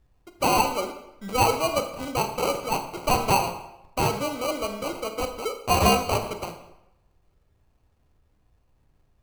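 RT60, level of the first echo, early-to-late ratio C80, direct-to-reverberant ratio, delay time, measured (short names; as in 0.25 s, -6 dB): 0.85 s, none, 11.0 dB, 6.0 dB, none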